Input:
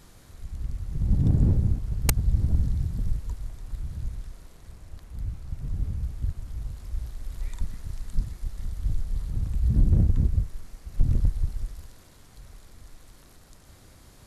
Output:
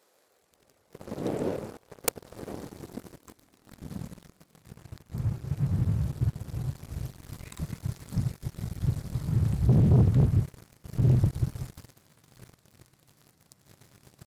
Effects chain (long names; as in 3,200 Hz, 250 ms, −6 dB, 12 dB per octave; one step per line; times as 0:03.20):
pitch shifter +1 semitone
high-pass filter sweep 490 Hz → 130 Hz, 0:02.33–0:04.84
leveller curve on the samples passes 3
level −6 dB